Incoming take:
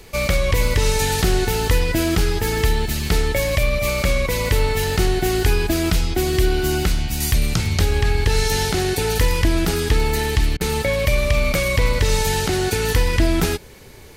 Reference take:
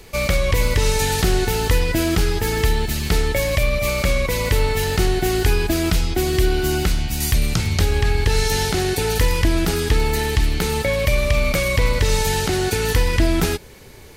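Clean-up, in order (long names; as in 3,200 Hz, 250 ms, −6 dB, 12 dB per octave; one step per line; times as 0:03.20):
repair the gap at 0:10.57, 36 ms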